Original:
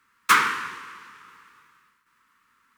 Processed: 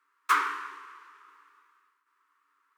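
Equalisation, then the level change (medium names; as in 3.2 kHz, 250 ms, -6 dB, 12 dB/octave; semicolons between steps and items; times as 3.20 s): rippled Chebyshev high-pass 280 Hz, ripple 9 dB; -4.0 dB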